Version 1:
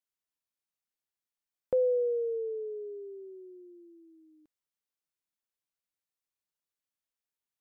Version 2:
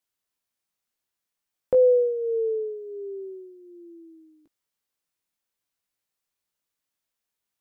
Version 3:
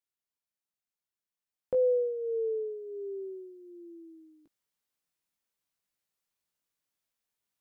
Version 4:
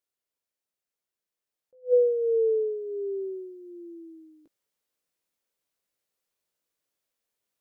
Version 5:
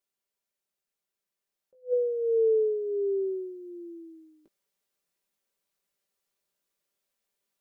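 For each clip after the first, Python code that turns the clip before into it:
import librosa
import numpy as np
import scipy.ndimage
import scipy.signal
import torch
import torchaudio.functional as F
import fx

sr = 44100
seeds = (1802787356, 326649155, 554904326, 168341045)

y1 = fx.doubler(x, sr, ms=18.0, db=-7.5)
y1 = y1 * 10.0 ** (6.5 / 20.0)
y2 = fx.peak_eq(y1, sr, hz=170.0, db=2.5, octaves=0.77)
y2 = fx.rider(y2, sr, range_db=4, speed_s=2.0)
y2 = y2 * 10.0 ** (-6.5 / 20.0)
y3 = fx.curve_eq(y2, sr, hz=(190.0, 520.0, 790.0), db=(0, 9, 2))
y3 = fx.attack_slew(y3, sr, db_per_s=330.0)
y4 = y3 + 0.51 * np.pad(y3, (int(5.1 * sr / 1000.0), 0))[:len(y3)]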